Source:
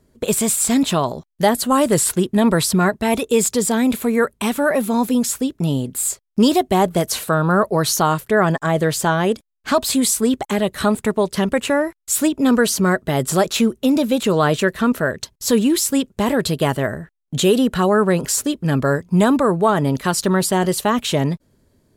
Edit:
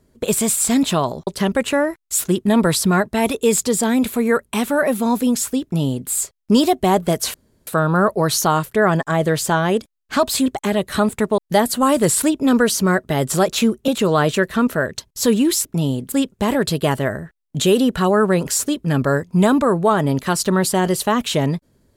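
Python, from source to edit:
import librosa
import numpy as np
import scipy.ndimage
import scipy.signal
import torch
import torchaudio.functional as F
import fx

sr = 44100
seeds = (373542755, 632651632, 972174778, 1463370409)

y = fx.edit(x, sr, fx.swap(start_s=1.27, length_s=0.85, other_s=11.24, other_length_s=0.97),
    fx.duplicate(start_s=5.51, length_s=0.47, to_s=15.9),
    fx.insert_room_tone(at_s=7.22, length_s=0.33),
    fx.cut(start_s=10.01, length_s=0.31),
    fx.cut(start_s=13.86, length_s=0.27), tone=tone)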